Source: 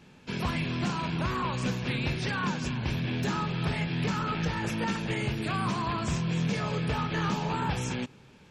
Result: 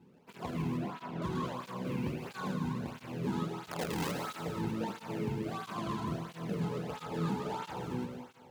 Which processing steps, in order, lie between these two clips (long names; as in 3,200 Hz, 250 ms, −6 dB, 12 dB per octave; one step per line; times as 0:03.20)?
running median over 25 samples
0:00.77–0:01.22: Bessel low-pass filter 2,800 Hz
0:03.71–0:04.12: wrap-around overflow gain 26.5 dB
dense smooth reverb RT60 1.9 s, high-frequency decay 1×, pre-delay 80 ms, DRR 3 dB
through-zero flanger with one copy inverted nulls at 1.5 Hz, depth 1.8 ms
level −2 dB